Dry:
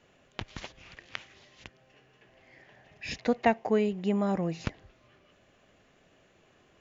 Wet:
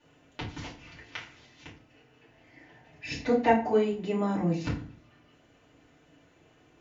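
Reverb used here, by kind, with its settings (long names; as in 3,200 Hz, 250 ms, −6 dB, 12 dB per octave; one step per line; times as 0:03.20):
feedback delay network reverb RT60 0.41 s, low-frequency decay 1.55×, high-frequency decay 0.75×, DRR −8 dB
level −7.5 dB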